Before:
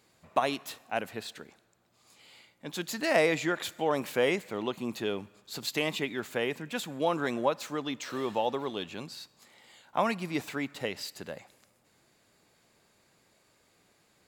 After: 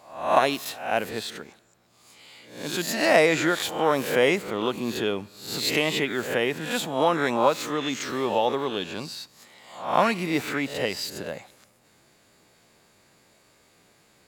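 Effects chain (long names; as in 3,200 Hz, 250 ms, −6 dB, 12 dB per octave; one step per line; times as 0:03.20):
peak hold with a rise ahead of every peak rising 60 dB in 0.54 s
level +5 dB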